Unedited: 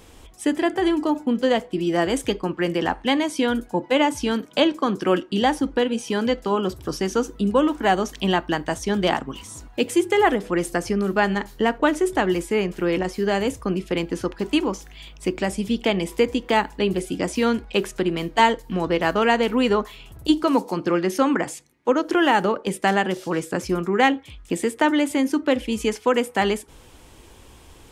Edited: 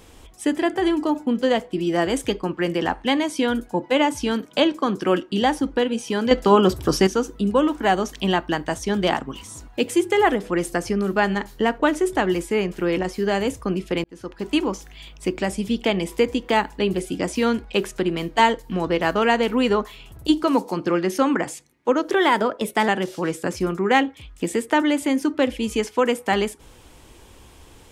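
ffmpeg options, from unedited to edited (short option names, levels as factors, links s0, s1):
-filter_complex "[0:a]asplit=6[s0][s1][s2][s3][s4][s5];[s0]atrim=end=6.312[s6];[s1]atrim=start=6.308:end=7.072,asetpts=PTS-STARTPTS,volume=2.37[s7];[s2]atrim=start=7.068:end=14.04,asetpts=PTS-STARTPTS,afade=t=out:st=6.968:d=0.004:c=hsin[s8];[s3]atrim=start=14.04:end=22.104,asetpts=PTS-STARTPTS,afade=t=in:d=0.54[s9];[s4]atrim=start=22.1:end=22.97,asetpts=PTS-STARTPTS,asetrate=48951,aresample=44100[s10];[s5]atrim=start=22.966[s11];[s6][s7]acrossfade=d=0.004:c1=hsin:c2=hsin[s12];[s8][s9]concat=n=2:v=0:a=1[s13];[s12][s13]acrossfade=d=0.004:c1=hsin:c2=hsin[s14];[s14][s10]acrossfade=d=0.004:c1=hsin:c2=hsin[s15];[s15][s11]acrossfade=d=0.004:c1=hsin:c2=hsin"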